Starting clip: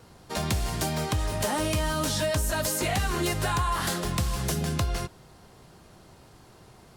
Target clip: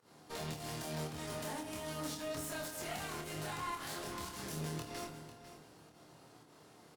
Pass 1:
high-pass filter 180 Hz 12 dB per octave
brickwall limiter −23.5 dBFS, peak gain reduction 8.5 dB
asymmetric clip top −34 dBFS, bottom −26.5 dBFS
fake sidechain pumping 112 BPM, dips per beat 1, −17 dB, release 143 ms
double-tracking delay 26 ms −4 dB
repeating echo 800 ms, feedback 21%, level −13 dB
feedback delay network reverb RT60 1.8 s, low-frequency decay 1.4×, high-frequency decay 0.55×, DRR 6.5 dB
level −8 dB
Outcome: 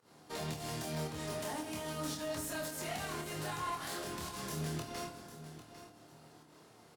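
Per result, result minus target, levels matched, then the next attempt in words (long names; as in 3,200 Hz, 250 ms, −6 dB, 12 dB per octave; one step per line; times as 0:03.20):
echo 302 ms late; asymmetric clip: distortion −5 dB
high-pass filter 180 Hz 12 dB per octave
brickwall limiter −23.5 dBFS, peak gain reduction 8.5 dB
asymmetric clip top −34 dBFS, bottom −26.5 dBFS
fake sidechain pumping 112 BPM, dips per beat 1, −17 dB, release 143 ms
double-tracking delay 26 ms −4 dB
repeating echo 498 ms, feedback 21%, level −13 dB
feedback delay network reverb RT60 1.8 s, low-frequency decay 1.4×, high-frequency decay 0.55×, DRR 6.5 dB
level −8 dB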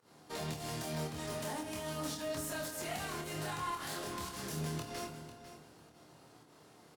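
asymmetric clip: distortion −5 dB
high-pass filter 180 Hz 12 dB per octave
brickwall limiter −23.5 dBFS, peak gain reduction 8.5 dB
asymmetric clip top −44.5 dBFS, bottom −26.5 dBFS
fake sidechain pumping 112 BPM, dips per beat 1, −17 dB, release 143 ms
double-tracking delay 26 ms −4 dB
repeating echo 498 ms, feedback 21%, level −13 dB
feedback delay network reverb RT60 1.8 s, low-frequency decay 1.4×, high-frequency decay 0.55×, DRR 6.5 dB
level −8 dB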